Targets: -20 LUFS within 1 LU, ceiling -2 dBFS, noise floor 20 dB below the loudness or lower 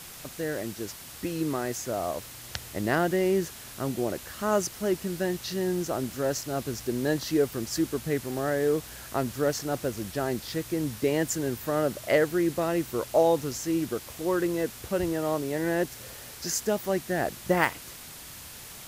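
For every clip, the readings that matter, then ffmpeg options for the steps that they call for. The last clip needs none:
noise floor -44 dBFS; noise floor target -49 dBFS; loudness -29.0 LUFS; peak level -7.0 dBFS; loudness target -20.0 LUFS
-> -af "afftdn=nr=6:nf=-44"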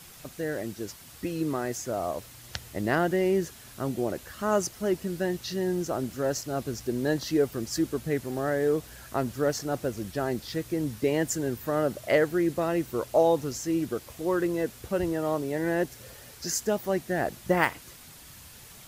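noise floor -49 dBFS; loudness -29.0 LUFS; peak level -7.0 dBFS; loudness target -20.0 LUFS
-> -af "volume=2.82,alimiter=limit=0.794:level=0:latency=1"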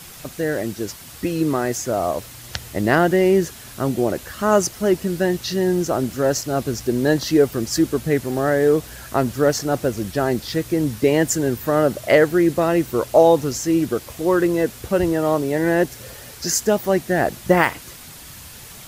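loudness -20.0 LUFS; peak level -2.0 dBFS; noise floor -40 dBFS

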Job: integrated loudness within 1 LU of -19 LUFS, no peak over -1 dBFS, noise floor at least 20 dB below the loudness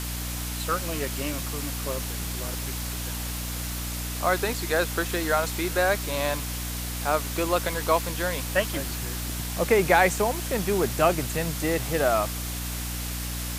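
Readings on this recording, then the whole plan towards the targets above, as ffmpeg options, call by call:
hum 60 Hz; highest harmonic 300 Hz; hum level -31 dBFS; noise floor -32 dBFS; noise floor target -47 dBFS; loudness -26.5 LUFS; peak level -6.0 dBFS; loudness target -19.0 LUFS
-> -af "bandreject=f=60:t=h:w=6,bandreject=f=120:t=h:w=6,bandreject=f=180:t=h:w=6,bandreject=f=240:t=h:w=6,bandreject=f=300:t=h:w=6"
-af "afftdn=nr=15:nf=-32"
-af "volume=2.37,alimiter=limit=0.891:level=0:latency=1"

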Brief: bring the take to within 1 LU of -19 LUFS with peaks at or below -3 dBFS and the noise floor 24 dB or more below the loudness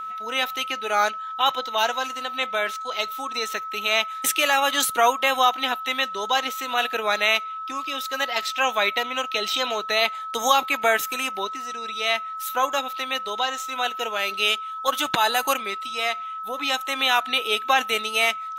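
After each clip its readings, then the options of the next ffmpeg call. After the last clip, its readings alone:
steady tone 1.3 kHz; tone level -30 dBFS; loudness -23.0 LUFS; peak level -5.0 dBFS; loudness target -19.0 LUFS
-> -af "bandreject=f=1300:w=30"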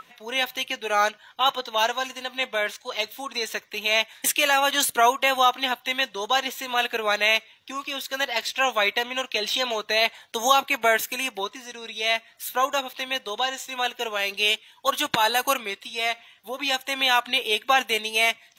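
steady tone not found; loudness -23.5 LUFS; peak level -5.0 dBFS; loudness target -19.0 LUFS
-> -af "volume=1.68,alimiter=limit=0.708:level=0:latency=1"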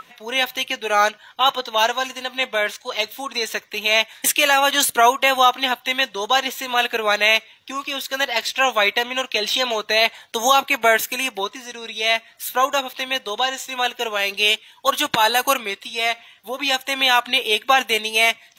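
loudness -19.5 LUFS; peak level -3.0 dBFS; noise floor -52 dBFS

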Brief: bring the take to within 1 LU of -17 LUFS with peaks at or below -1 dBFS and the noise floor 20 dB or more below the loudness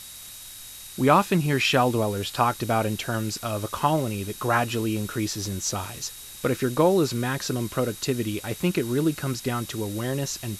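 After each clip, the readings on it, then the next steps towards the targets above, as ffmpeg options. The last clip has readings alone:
steady tone 3.8 kHz; tone level -48 dBFS; noise floor -42 dBFS; noise floor target -46 dBFS; loudness -25.5 LUFS; peak level -5.5 dBFS; loudness target -17.0 LUFS
-> -af "bandreject=f=3800:w=30"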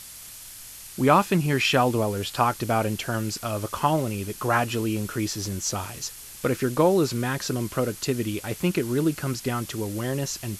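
steady tone not found; noise floor -42 dBFS; noise floor target -46 dBFS
-> -af "afftdn=nr=6:nf=-42"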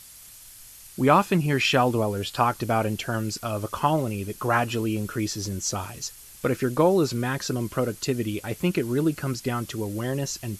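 noise floor -47 dBFS; loudness -25.5 LUFS; peak level -5.0 dBFS; loudness target -17.0 LUFS
-> -af "volume=2.66,alimiter=limit=0.891:level=0:latency=1"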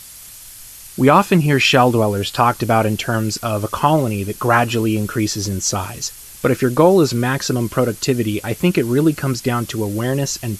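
loudness -17.0 LUFS; peak level -1.0 dBFS; noise floor -38 dBFS

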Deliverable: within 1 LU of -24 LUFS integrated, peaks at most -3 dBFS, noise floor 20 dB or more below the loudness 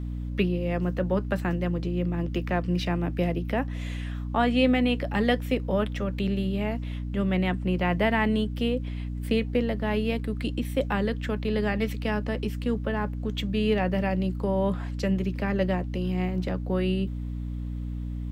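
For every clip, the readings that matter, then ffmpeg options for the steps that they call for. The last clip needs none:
hum 60 Hz; highest harmonic 300 Hz; hum level -29 dBFS; loudness -27.5 LUFS; peak level -9.5 dBFS; loudness target -24.0 LUFS
-> -af "bandreject=f=60:t=h:w=6,bandreject=f=120:t=h:w=6,bandreject=f=180:t=h:w=6,bandreject=f=240:t=h:w=6,bandreject=f=300:t=h:w=6"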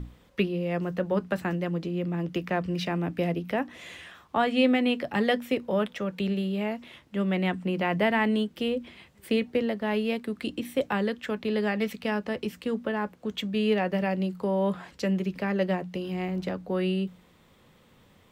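hum not found; loudness -28.5 LUFS; peak level -11.5 dBFS; loudness target -24.0 LUFS
-> -af "volume=1.68"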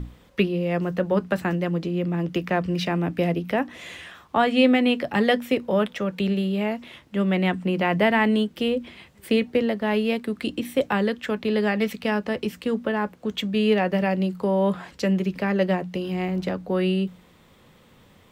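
loudness -24.0 LUFS; peak level -7.0 dBFS; noise floor -55 dBFS

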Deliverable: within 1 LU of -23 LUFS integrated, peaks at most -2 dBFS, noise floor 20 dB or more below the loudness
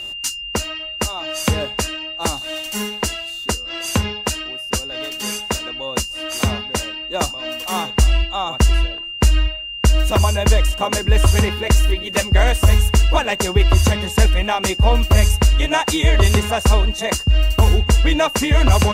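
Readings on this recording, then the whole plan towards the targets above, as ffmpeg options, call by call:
steady tone 2.8 kHz; tone level -27 dBFS; loudness -18.5 LUFS; peak level -1.5 dBFS; loudness target -23.0 LUFS
-> -af "bandreject=f=2800:w=30"
-af "volume=0.596"

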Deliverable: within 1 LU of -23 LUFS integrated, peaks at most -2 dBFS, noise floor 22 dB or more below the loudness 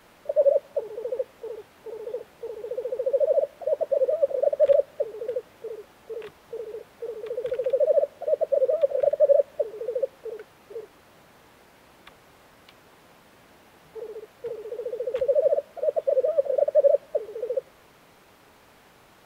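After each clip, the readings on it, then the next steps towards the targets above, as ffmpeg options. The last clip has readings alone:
loudness -25.5 LUFS; peak level -9.0 dBFS; loudness target -23.0 LUFS
-> -af "volume=1.33"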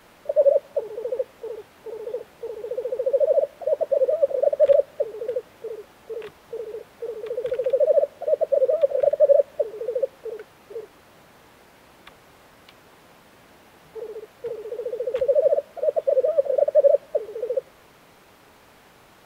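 loudness -23.0 LUFS; peak level -6.5 dBFS; noise floor -53 dBFS

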